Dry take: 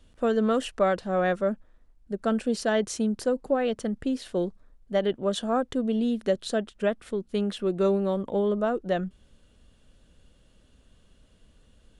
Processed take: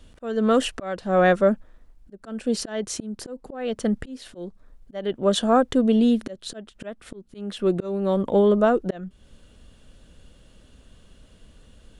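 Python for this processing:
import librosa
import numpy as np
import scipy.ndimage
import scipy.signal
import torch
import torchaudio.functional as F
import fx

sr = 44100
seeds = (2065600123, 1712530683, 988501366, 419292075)

y = fx.auto_swell(x, sr, attack_ms=426.0)
y = F.gain(torch.from_numpy(y), 7.5).numpy()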